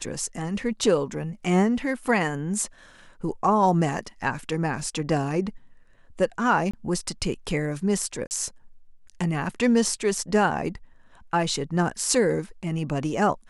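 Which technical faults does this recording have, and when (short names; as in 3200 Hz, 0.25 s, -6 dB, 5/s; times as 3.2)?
6.71–6.74 gap 25 ms
8.27–8.31 gap 39 ms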